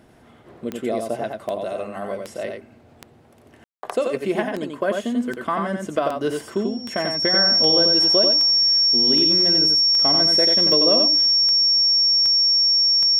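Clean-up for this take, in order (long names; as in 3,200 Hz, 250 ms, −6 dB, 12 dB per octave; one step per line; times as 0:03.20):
click removal
notch filter 5,500 Hz, Q 30
ambience match 0:03.64–0:03.83
echo removal 90 ms −4.5 dB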